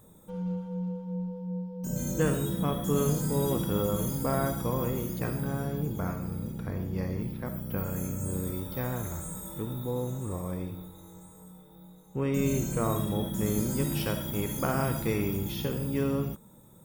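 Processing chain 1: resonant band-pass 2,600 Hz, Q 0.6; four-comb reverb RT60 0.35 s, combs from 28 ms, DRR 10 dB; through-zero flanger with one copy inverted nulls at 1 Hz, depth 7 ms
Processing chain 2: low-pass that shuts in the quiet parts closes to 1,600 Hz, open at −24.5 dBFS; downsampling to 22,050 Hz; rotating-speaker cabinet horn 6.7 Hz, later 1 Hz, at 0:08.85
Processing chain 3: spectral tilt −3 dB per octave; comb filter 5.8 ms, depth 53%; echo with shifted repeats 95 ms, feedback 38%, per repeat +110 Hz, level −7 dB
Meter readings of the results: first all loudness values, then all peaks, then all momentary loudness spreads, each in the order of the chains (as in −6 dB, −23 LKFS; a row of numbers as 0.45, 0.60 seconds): −44.0, −33.0, −22.5 LKFS; −24.5, −15.0, −6.5 dBFS; 15, 9, 11 LU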